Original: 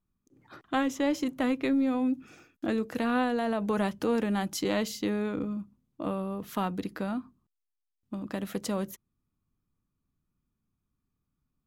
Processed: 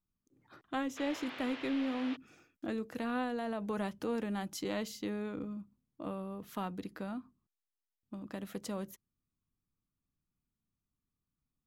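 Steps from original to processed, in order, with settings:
0:00.96–0:02.15: noise in a band 270–3,300 Hz −39 dBFS
level −8 dB

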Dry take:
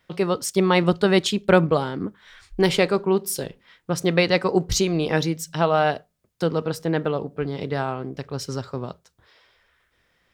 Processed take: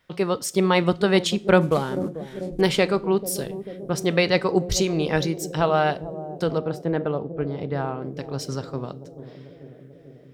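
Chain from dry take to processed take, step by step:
0:01.61–0:02.61: variable-slope delta modulation 64 kbit/s
0:06.58–0:08.02: high-shelf EQ 2,400 Hz −12 dB
bucket-brigade delay 441 ms, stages 2,048, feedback 71%, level −13 dB
coupled-rooms reverb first 0.4 s, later 2.7 s, from −27 dB, DRR 17.5 dB
level −1 dB

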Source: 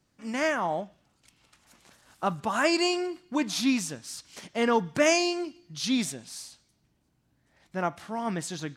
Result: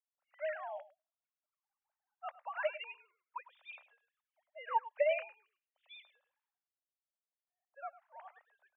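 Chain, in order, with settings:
three sine waves on the formant tracks
low-pass that shuts in the quiet parts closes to 950 Hz, open at −21.5 dBFS
Butterworth high-pass 550 Hz 72 dB per octave
on a send: single-tap delay 104 ms −11.5 dB
on the sum: expander for the loud parts 1.5 to 1, over −45 dBFS
level −8 dB

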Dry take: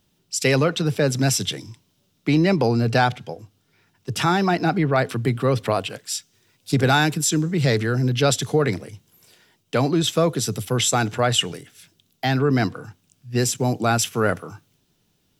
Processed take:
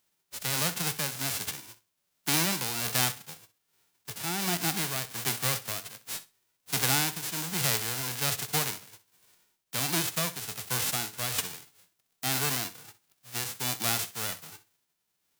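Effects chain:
spectral envelope flattened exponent 0.1
amplitude tremolo 1.3 Hz, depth 47%
flutter between parallel walls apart 10.8 metres, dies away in 0.24 s
level −8.5 dB

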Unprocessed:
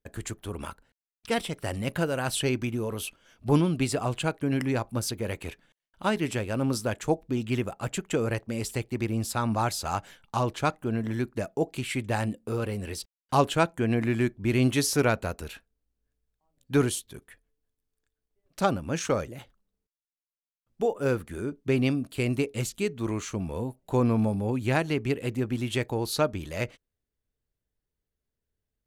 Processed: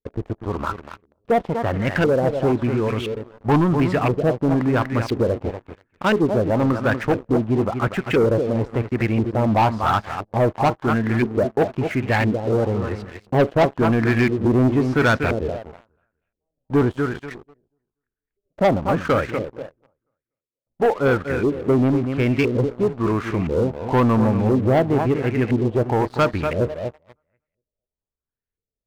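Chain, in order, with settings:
feedback echo with a low-pass in the loop 242 ms, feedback 25%, low-pass 4,800 Hz, level −9 dB
auto-filter low-pass saw up 0.98 Hz 400–2,400 Hz
leveller curve on the samples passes 3
level −2.5 dB

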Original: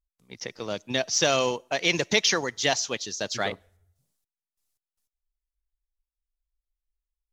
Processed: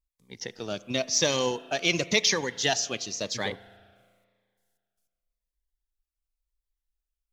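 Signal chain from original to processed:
spring reverb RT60 2 s, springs 35 ms, chirp 55 ms, DRR 17.5 dB
phaser whose notches keep moving one way falling 0.94 Hz

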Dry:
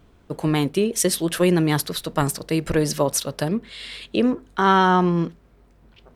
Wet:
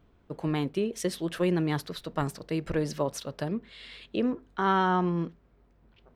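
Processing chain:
parametric band 11,000 Hz −12 dB 1.6 octaves
level −8 dB

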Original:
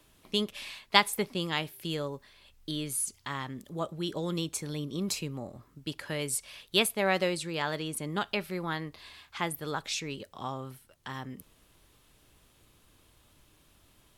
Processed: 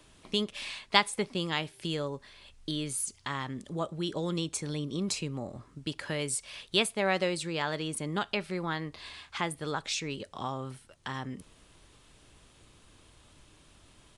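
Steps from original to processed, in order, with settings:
in parallel at +2 dB: downward compressor, threshold −40 dBFS, peak gain reduction 22.5 dB
on the sum: downsampling to 22,050 Hz
level −2.5 dB

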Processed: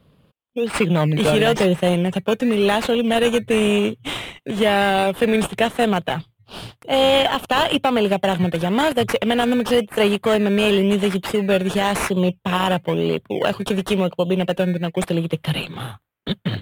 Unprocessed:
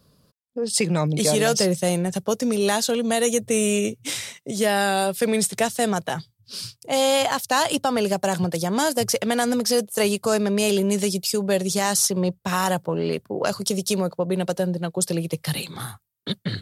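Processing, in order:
in parallel at −4 dB: sample-and-hold swept by an LFO 17×, swing 60% 0.97 Hz
on the sum: high shelf with overshoot 4,000 Hz −8.5 dB, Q 3

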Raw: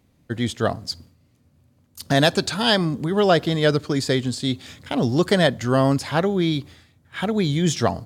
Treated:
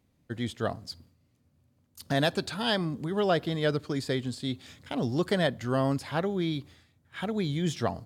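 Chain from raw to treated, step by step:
dynamic equaliser 6,400 Hz, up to −6 dB, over −41 dBFS, Q 1.5
level −8.5 dB

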